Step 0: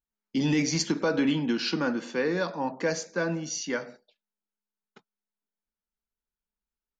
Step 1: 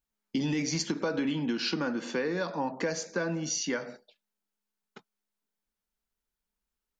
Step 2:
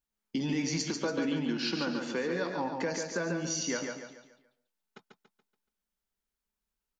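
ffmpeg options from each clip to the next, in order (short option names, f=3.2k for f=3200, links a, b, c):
-af "acompressor=threshold=-33dB:ratio=4,volume=4.5dB"
-af "aecho=1:1:142|284|426|568|710:0.562|0.225|0.09|0.036|0.0144,volume=-2.5dB"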